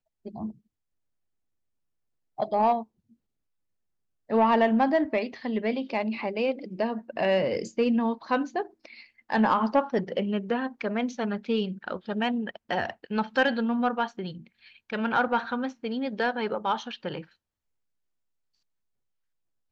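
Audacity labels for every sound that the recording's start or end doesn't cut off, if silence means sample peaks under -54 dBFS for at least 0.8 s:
2.380000	3.130000	sound
4.290000	17.330000	sound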